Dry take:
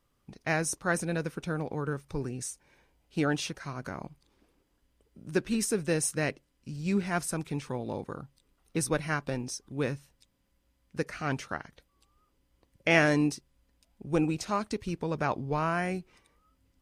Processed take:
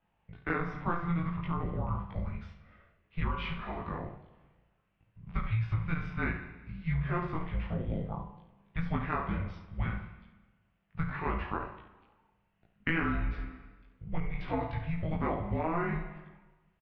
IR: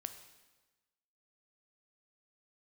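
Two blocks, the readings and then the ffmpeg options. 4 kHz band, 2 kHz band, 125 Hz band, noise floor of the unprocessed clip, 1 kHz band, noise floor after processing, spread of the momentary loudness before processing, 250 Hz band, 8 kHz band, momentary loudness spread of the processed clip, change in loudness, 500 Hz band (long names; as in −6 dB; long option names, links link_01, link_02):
−10.0 dB, −5.0 dB, +1.0 dB, −73 dBFS, −1.5 dB, −74 dBFS, 12 LU, −4.5 dB, below −40 dB, 13 LU, −4.0 dB, −8.0 dB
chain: -filter_complex "[0:a]highpass=frequency=170:width_type=q:width=0.5412,highpass=frequency=170:width_type=q:width=1.307,lowpass=frequency=3300:width_type=q:width=0.5176,lowpass=frequency=3300:width_type=q:width=0.7071,lowpass=frequency=3300:width_type=q:width=1.932,afreqshift=-340,aecho=1:1:35|70:0.335|0.316,asplit=2[link_01][link_02];[1:a]atrim=start_sample=2205,lowpass=4900,adelay=19[link_03];[link_02][link_03]afir=irnorm=-1:irlink=0,volume=4.5dB[link_04];[link_01][link_04]amix=inputs=2:normalize=0,acompressor=threshold=-25dB:ratio=6,volume=-2dB"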